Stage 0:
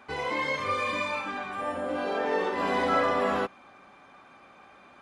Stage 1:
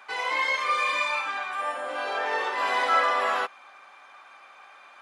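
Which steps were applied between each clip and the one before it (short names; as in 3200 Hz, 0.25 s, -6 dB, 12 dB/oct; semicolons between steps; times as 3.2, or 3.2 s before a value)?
HPF 870 Hz 12 dB/oct; gain +5.5 dB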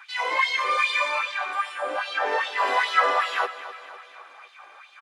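LFO high-pass sine 2.5 Hz 300–3700 Hz; feedback echo 0.254 s, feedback 54%, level -14.5 dB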